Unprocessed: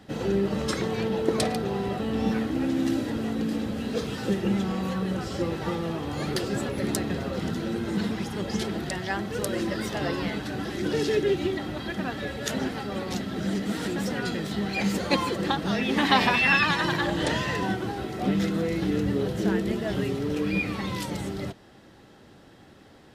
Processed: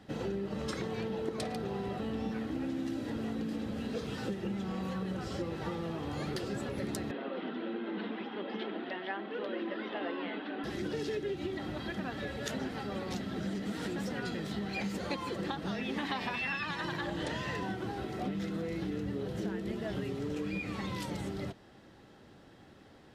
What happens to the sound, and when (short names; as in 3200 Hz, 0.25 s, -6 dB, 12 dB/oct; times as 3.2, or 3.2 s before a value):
7.11–10.64 elliptic band-pass 250–3300 Hz
20.19–20.87 bell 7200 Hz +5.5 dB 0.43 oct
whole clip: high shelf 7000 Hz -5.5 dB; compressor, threshold -28 dBFS; gain -4.5 dB